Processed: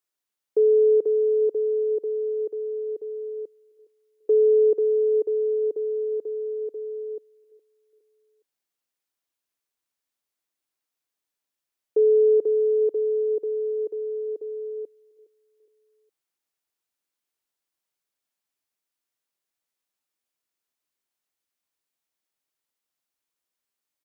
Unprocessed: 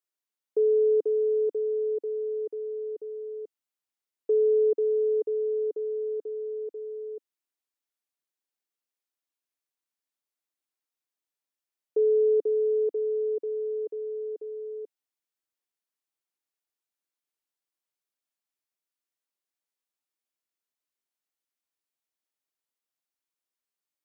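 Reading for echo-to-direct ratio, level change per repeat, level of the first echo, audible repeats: -21.5 dB, -6.5 dB, -22.5 dB, 2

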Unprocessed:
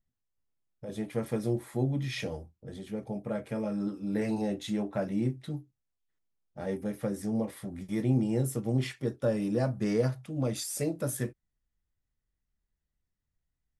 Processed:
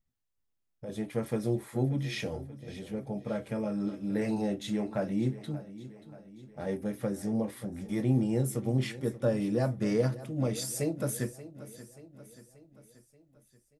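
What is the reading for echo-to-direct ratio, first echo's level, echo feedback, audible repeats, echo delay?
-14.5 dB, -16.0 dB, 54%, 4, 0.582 s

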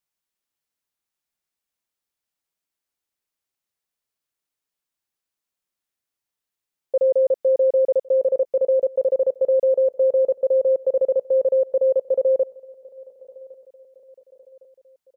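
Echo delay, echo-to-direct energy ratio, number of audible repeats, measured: 1.109 s, -22.0 dB, 2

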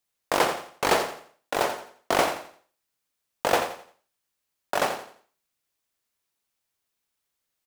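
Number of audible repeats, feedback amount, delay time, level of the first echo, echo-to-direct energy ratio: 3, 32%, 86 ms, -10.0 dB, -9.5 dB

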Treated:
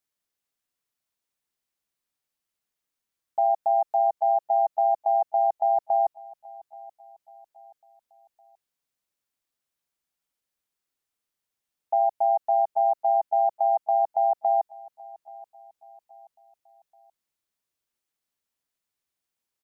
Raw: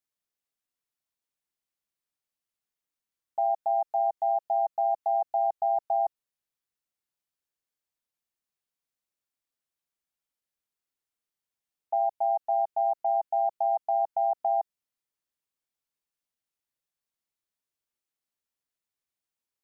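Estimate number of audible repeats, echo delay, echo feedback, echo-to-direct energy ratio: 2, 0.829 s, 41%, -20.0 dB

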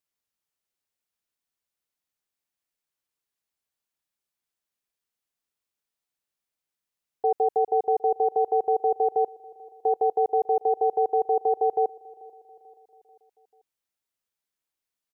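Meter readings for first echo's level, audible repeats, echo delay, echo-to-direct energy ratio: -23.0 dB, 3, 0.439 s, -21.5 dB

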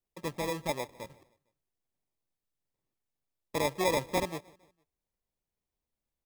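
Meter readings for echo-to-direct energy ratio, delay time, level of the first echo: -22.0 dB, 0.152 s, -23.0 dB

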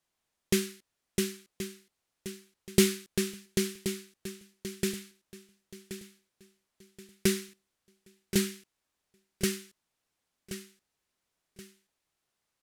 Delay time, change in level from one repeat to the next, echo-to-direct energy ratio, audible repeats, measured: 1.077 s, -9.5 dB, -10.5 dB, 3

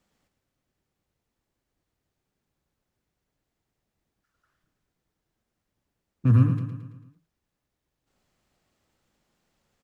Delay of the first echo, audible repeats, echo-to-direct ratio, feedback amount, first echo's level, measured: 0.111 s, 5, -7.5 dB, 54%, -9.0 dB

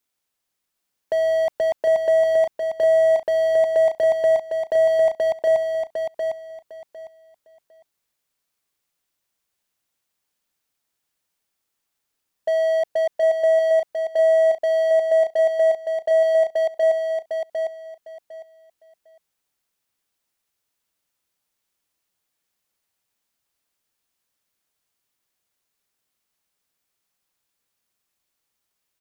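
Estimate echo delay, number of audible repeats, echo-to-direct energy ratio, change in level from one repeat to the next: 0.754 s, 3, -5.0 dB, -13.5 dB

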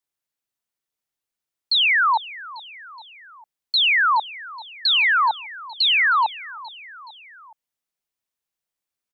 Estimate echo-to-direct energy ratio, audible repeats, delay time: -17.0 dB, 3, 0.422 s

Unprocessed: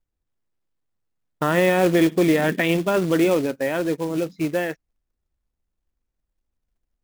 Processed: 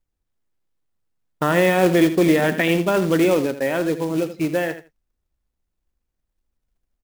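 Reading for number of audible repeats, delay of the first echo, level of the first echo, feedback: 2, 81 ms, -12.0 dB, 17%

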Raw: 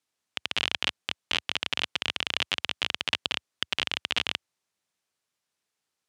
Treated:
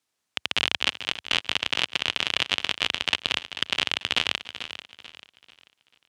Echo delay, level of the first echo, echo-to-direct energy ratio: 0.291 s, -22.0 dB, -11.0 dB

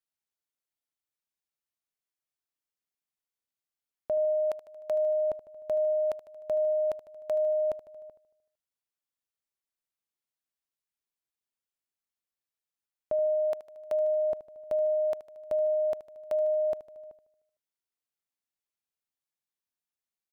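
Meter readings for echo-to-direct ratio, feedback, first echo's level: -13.0 dB, 60%, -15.0 dB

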